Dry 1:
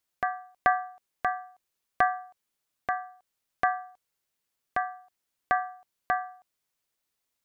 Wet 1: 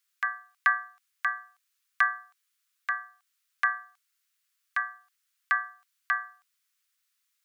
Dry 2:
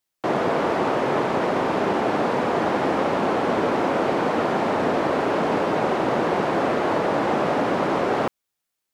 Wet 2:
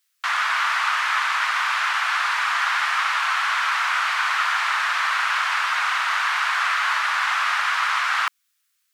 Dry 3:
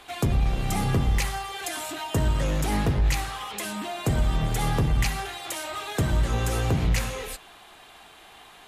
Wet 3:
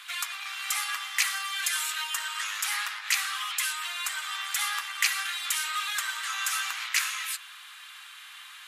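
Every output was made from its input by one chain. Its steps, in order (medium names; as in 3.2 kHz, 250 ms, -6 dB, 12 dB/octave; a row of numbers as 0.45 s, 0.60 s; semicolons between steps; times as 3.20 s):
steep high-pass 1.2 kHz 36 dB/octave; peak normalisation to -9 dBFS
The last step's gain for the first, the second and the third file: +5.0 dB, +10.5 dB, +5.5 dB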